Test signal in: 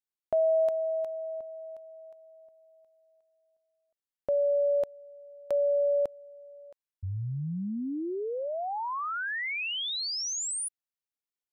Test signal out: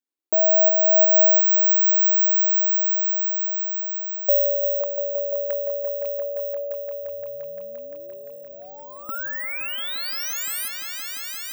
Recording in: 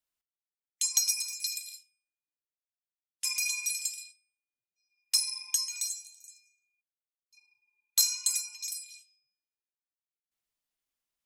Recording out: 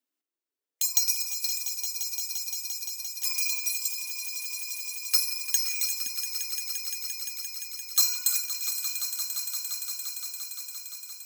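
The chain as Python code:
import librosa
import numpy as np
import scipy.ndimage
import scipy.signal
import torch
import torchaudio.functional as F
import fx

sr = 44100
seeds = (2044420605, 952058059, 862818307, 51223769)

y = fx.filter_lfo_highpass(x, sr, shape='saw_up', hz=0.33, low_hz=260.0, high_hz=2600.0, q=5.5)
y = (np.kron(scipy.signal.resample_poly(y, 1, 2), np.eye(2)[0]) * 2)[:len(y)]
y = fx.echo_swell(y, sr, ms=173, loudest=5, wet_db=-11)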